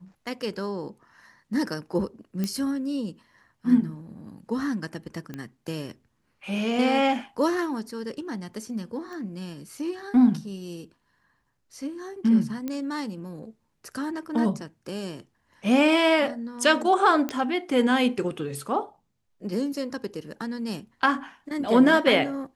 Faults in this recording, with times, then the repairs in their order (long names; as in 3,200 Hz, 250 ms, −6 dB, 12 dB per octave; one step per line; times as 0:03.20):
0:02.44: click −15 dBFS
0:05.34: click −22 dBFS
0:09.13: click −29 dBFS
0:12.68: click −18 dBFS
0:17.29: click −14 dBFS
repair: click removal